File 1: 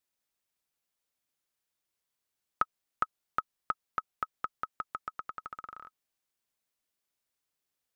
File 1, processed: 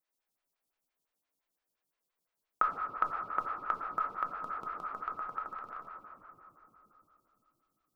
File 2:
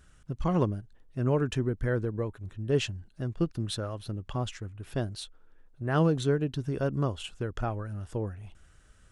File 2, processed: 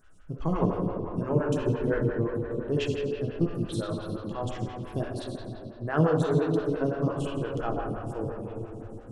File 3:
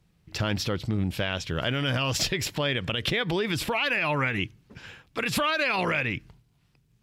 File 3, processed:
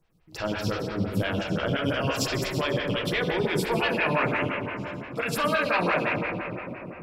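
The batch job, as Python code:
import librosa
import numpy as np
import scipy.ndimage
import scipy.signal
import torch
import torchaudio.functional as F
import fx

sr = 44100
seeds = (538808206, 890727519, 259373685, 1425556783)

y = fx.room_shoebox(x, sr, seeds[0], volume_m3=200.0, walls='hard', distance_m=0.63)
y = fx.stagger_phaser(y, sr, hz=5.8)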